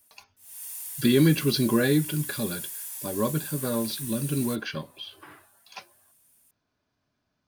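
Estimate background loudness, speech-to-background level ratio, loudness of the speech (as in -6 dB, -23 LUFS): -34.5 LUFS, 8.5 dB, -26.0 LUFS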